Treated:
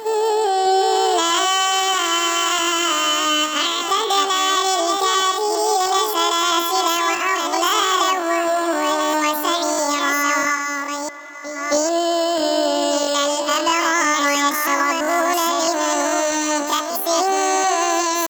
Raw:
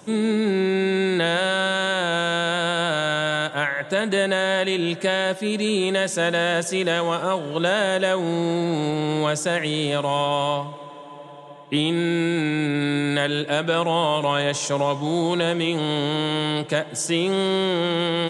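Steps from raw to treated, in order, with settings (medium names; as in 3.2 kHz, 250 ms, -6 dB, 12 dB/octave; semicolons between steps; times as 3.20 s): chunks repeated in reverse 653 ms, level -4.5 dB; reverse echo 266 ms -14.5 dB; pitch shift +12 st; trim +2.5 dB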